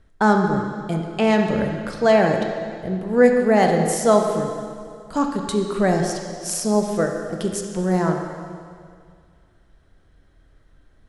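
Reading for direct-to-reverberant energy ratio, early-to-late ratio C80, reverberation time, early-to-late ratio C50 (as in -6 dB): 2.5 dB, 5.0 dB, 2.1 s, 4.0 dB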